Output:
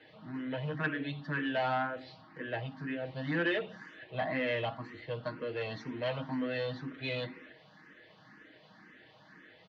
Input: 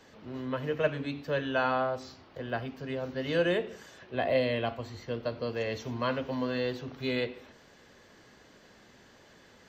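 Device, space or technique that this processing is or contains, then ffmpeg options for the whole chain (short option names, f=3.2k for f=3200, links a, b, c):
barber-pole phaser into a guitar amplifier: -filter_complex "[0:a]aecho=1:1:6.4:0.72,asplit=2[a][b];[b]afreqshift=2[c];[a][c]amix=inputs=2:normalize=1,asoftclip=type=tanh:threshold=-25.5dB,highpass=95,equalizer=f=230:t=q:w=4:g=6,equalizer=f=460:t=q:w=4:g=-5,equalizer=f=1.8k:t=q:w=4:g=6,lowpass=f=4.1k:w=0.5412,lowpass=f=4.1k:w=1.3066"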